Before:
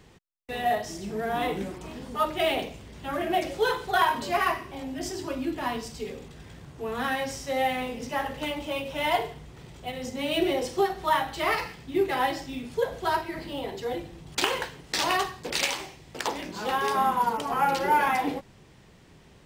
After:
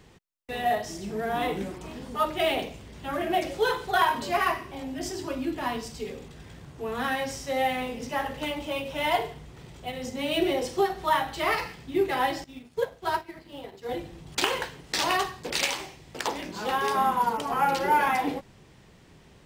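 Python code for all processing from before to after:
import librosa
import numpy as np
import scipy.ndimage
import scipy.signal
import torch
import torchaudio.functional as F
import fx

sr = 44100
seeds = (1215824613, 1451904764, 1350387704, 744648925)

y = fx.chain(x, sr, fx.law_mismatch(coded='A'),
    fx.highpass(hz=41.0, slope=12),
    fx.upward_expand(threshold_db=-44.0, expansion=1.5), at=(12.44, 13.89))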